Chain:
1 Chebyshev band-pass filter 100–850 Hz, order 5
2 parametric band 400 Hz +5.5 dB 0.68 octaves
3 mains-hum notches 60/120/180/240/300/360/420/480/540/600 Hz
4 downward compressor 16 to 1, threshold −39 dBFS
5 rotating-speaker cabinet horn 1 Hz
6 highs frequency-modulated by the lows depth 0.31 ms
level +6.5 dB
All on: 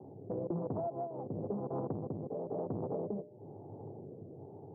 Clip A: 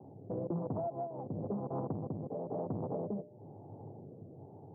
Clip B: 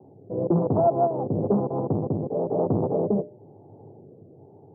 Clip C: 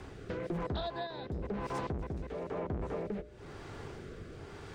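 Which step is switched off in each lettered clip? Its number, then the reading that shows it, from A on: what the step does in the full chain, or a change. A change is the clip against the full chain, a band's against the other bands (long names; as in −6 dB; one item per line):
2, 500 Hz band −1.5 dB
4, average gain reduction 8.5 dB
1, 1 kHz band +3.5 dB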